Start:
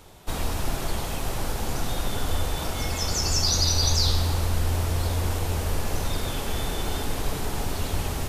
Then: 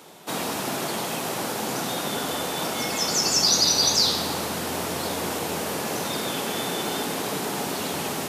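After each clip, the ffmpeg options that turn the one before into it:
-af "highpass=f=170:w=0.5412,highpass=f=170:w=1.3066,volume=1.68"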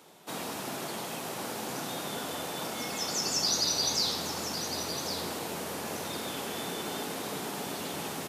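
-af "aecho=1:1:1106:0.355,volume=0.376"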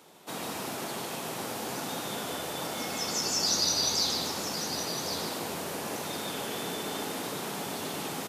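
-af "aecho=1:1:147:0.531"

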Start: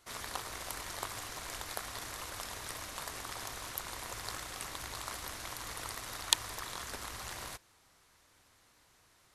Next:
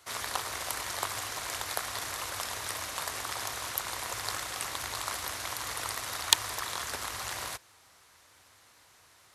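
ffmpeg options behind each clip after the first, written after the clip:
-filter_complex "[0:a]acrossover=split=440[s0][s1];[s1]acontrast=76[s2];[s0][s2]amix=inputs=2:normalize=0,highpass=54,equalizer=f=93:t=o:w=0.53:g=5.5"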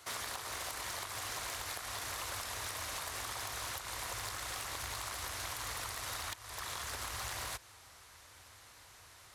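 -af "asubboost=boost=2.5:cutoff=110,acompressor=threshold=0.0141:ratio=16,asoftclip=type=tanh:threshold=0.0168,volume=1.33"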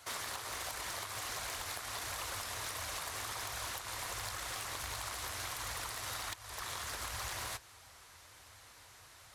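-af "flanger=delay=1.2:depth=8.6:regen=-49:speed=1.4:shape=sinusoidal,volume=1.58"

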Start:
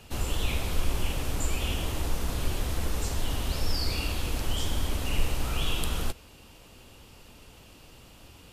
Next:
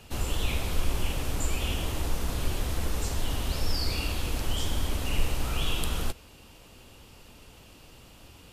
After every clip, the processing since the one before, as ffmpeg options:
-af anull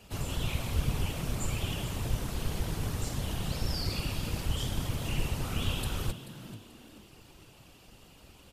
-filter_complex "[0:a]afftfilt=real='hypot(re,im)*cos(2*PI*random(0))':imag='hypot(re,im)*sin(2*PI*random(1))':win_size=512:overlap=0.75,asplit=4[s0][s1][s2][s3];[s1]adelay=435,afreqshift=100,volume=0.2[s4];[s2]adelay=870,afreqshift=200,volume=0.0661[s5];[s3]adelay=1305,afreqshift=300,volume=0.0216[s6];[s0][s4][s5][s6]amix=inputs=4:normalize=0,volume=1.26"

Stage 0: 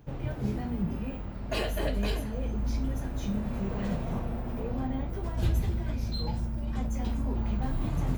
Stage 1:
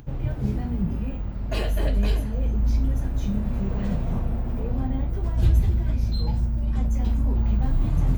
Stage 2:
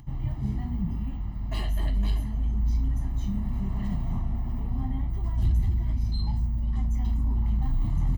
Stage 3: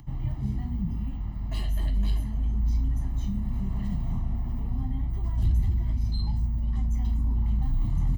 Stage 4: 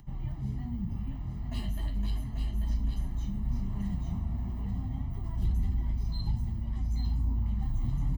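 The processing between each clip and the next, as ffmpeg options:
-af "lowshelf=f=150:g=10.5,acompressor=mode=upward:threshold=0.00794:ratio=2.5"
-af "asoftclip=type=tanh:threshold=0.188,aecho=1:1:1:0.97,volume=0.422"
-filter_complex "[0:a]acrossover=split=260|3000[s0][s1][s2];[s1]acompressor=threshold=0.00501:ratio=2.5[s3];[s0][s3][s2]amix=inputs=3:normalize=0"
-af "flanger=delay=5:depth=6.8:regen=49:speed=0.35:shape=sinusoidal,aecho=1:1:839:0.531"

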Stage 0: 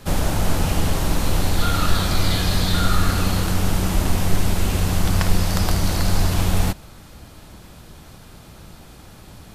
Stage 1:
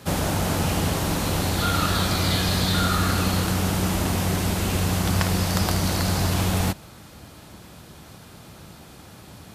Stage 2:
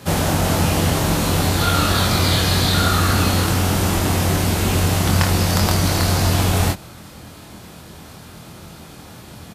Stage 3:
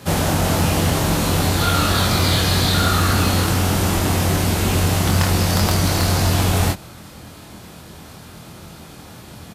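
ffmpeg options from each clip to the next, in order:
-af "highpass=82"
-filter_complex "[0:a]asplit=2[s0][s1];[s1]adelay=24,volume=0.631[s2];[s0][s2]amix=inputs=2:normalize=0,volume=1.58"
-af "volume=2.99,asoftclip=hard,volume=0.335"

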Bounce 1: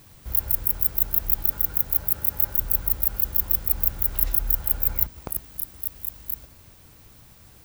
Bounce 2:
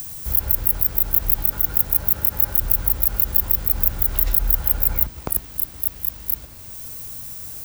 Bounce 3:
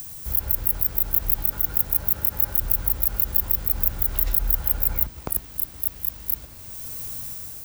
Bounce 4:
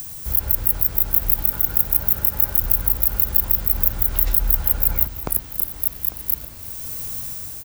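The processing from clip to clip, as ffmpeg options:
-filter_complex "[0:a]acrossover=split=320|890|6200[s0][s1][s2][s3];[s3]acompressor=mode=upward:threshold=0.0398:ratio=2.5[s4];[s0][s1][s2][s4]amix=inputs=4:normalize=0,alimiter=level_in=2.51:limit=0.891:release=50:level=0:latency=1,volume=0.891"
-af "dynaudnorm=f=220:g=5:m=2,volume=0.631"
-af "aecho=1:1:332|847:0.126|0.15,volume=1.5"

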